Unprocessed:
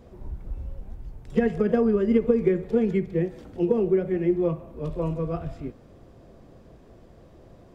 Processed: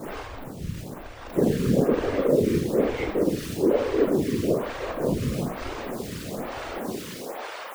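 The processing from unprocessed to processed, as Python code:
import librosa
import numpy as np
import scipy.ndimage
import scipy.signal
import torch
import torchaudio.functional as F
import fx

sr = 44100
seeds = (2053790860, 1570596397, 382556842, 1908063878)

y = x + 0.5 * 10.0 ** (-24.5 / 20.0) * np.sign(x)
y = fx.filter_sweep_highpass(y, sr, from_hz=80.0, to_hz=1000.0, start_s=6.49, end_s=7.65, q=0.87)
y = fx.rev_schroeder(y, sr, rt60_s=0.59, comb_ms=29, drr_db=-5.5)
y = fx.whisperise(y, sr, seeds[0])
y = fx.stagger_phaser(y, sr, hz=1.1)
y = F.gain(torch.from_numpy(y), -5.5).numpy()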